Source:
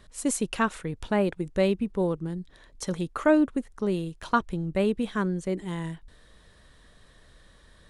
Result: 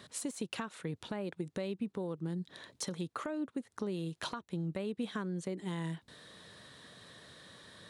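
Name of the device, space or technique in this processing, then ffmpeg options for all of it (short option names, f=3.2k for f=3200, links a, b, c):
broadcast voice chain: -af "highpass=f=110:w=0.5412,highpass=f=110:w=1.3066,deesser=0.6,acompressor=threshold=-37dB:ratio=5,equalizer=f=3.9k:t=o:w=0.52:g=4.5,alimiter=level_in=5.5dB:limit=-24dB:level=0:latency=1:release=216,volume=-5.5dB,volume=3.5dB"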